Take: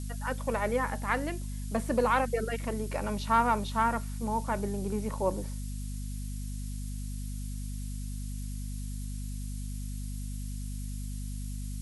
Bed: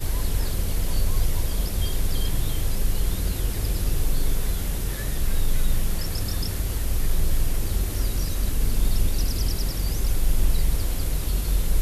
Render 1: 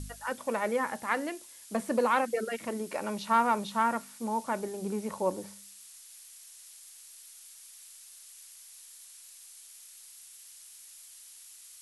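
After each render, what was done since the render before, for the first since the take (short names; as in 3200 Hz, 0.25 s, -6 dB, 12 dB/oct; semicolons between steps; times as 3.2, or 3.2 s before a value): de-hum 50 Hz, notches 5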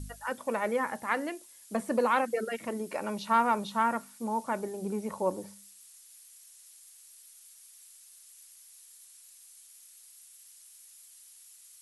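denoiser 6 dB, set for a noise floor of -52 dBFS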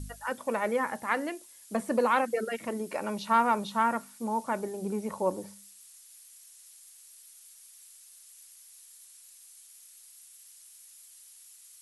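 gain +1 dB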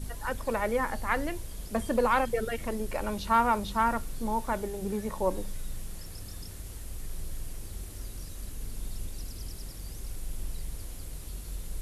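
add bed -15.5 dB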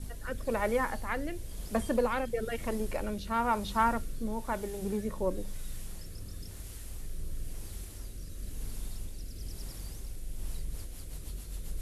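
rotary speaker horn 1 Hz, later 7.5 Hz, at 10.25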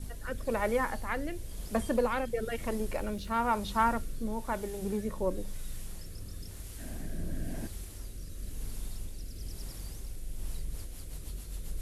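2.92–3.51 sample gate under -55.5 dBFS; 6.78–7.66 small resonant body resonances 240/640/1600 Hz, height 14 dB -> 17 dB, ringing for 20 ms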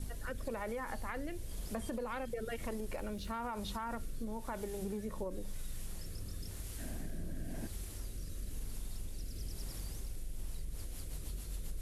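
limiter -25 dBFS, peak gain reduction 11 dB; compressor, threshold -36 dBFS, peak gain reduction 7.5 dB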